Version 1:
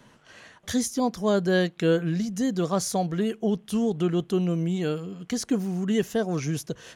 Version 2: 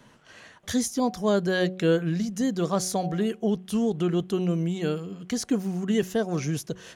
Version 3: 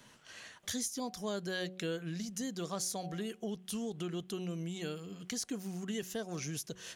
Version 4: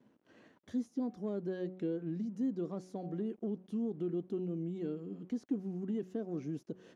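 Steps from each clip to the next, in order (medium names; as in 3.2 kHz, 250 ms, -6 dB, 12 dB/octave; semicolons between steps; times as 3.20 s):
de-hum 185 Hz, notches 4
treble shelf 2.1 kHz +11 dB; compression 2:1, threshold -33 dBFS, peak gain reduction 9.5 dB; trim -7.5 dB
waveshaping leveller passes 2; small samples zeroed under -58 dBFS; band-pass filter 290 Hz, Q 2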